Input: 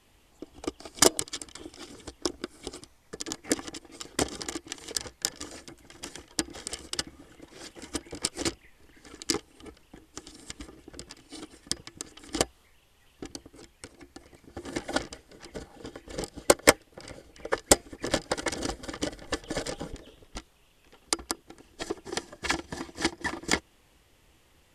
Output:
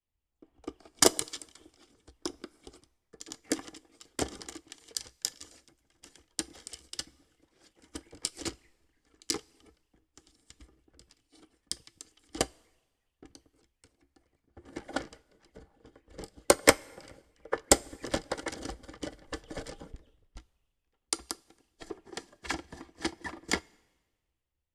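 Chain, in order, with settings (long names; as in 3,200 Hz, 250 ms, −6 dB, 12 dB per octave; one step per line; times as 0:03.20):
coupled-rooms reverb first 0.2 s, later 2.2 s, from −20 dB, DRR 15.5 dB
multiband upward and downward expander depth 70%
level −8 dB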